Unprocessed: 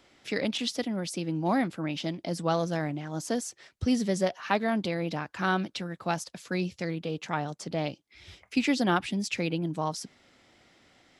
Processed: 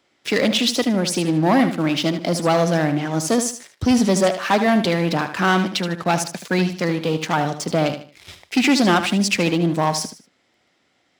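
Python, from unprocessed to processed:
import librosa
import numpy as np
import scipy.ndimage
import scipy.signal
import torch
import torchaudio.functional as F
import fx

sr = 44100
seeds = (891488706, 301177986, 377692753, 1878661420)

y = fx.leveller(x, sr, passes=3)
y = fx.highpass(y, sr, hz=140.0, slope=6)
y = fx.echo_feedback(y, sr, ms=76, feedback_pct=30, wet_db=-10.0)
y = F.gain(torch.from_numpy(y), 2.0).numpy()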